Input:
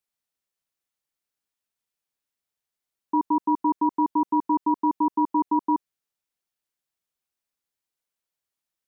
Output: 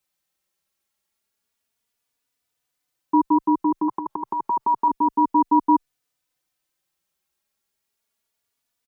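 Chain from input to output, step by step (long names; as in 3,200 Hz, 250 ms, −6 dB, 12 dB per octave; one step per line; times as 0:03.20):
0:03.88–0:04.88: graphic EQ with 10 bands 125 Hz +8 dB, 250 Hz −5 dB, 500 Hz +5 dB, 1,000 Hz +12 dB
boost into a limiter +18 dB
barber-pole flanger 3.4 ms +0.3 Hz
level −7 dB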